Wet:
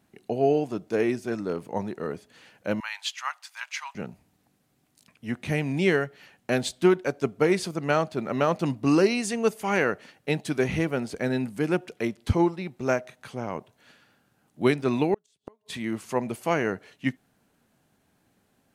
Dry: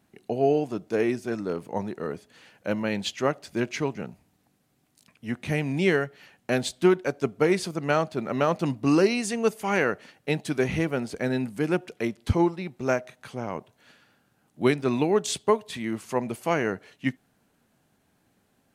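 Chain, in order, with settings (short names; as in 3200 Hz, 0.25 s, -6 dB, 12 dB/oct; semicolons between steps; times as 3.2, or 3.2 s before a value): 2.8–3.95 steep high-pass 880 Hz 48 dB/oct; 15.14–15.74 flipped gate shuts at -19 dBFS, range -39 dB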